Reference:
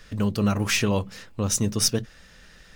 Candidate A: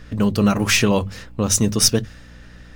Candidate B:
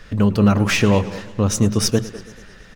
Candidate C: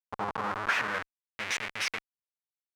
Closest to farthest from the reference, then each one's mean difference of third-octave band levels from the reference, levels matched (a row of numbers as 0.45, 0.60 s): A, B, C; 2.0, 4.0, 11.5 dB